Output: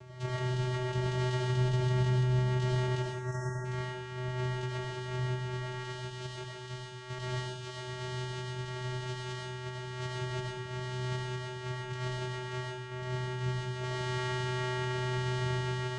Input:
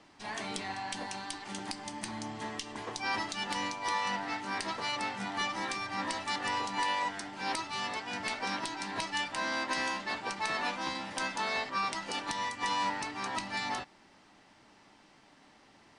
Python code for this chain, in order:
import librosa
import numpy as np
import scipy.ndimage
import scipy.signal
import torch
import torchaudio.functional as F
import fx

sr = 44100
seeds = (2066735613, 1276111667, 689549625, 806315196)

y = fx.peak_eq(x, sr, hz=4900.0, db=13.0, octaves=1.2, at=(5.84, 7.76))
y = fx.echo_diffused(y, sr, ms=1886, feedback_pct=52, wet_db=-9.5)
y = fx.over_compress(y, sr, threshold_db=-42.0, ratio=-1.0)
y = fx.vocoder(y, sr, bands=4, carrier='square', carrier_hz=126.0)
y = fx.spec_erase(y, sr, start_s=3.02, length_s=0.63, low_hz=2100.0, high_hz=5400.0)
y = fx.rev_freeverb(y, sr, rt60_s=0.7, hf_ratio=0.85, predelay_ms=50, drr_db=-2.5)
y = y * 10.0 ** (3.0 / 20.0)